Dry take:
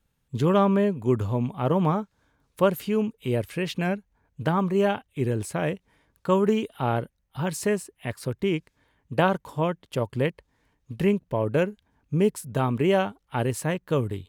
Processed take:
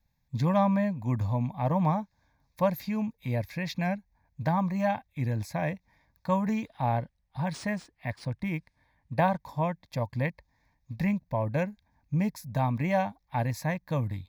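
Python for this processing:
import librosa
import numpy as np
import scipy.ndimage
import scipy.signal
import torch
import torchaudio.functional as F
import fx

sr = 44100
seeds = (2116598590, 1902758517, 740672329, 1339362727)

y = fx.fixed_phaser(x, sr, hz=2000.0, stages=8)
y = fx.resample_linear(y, sr, factor=3, at=(6.66, 9.4))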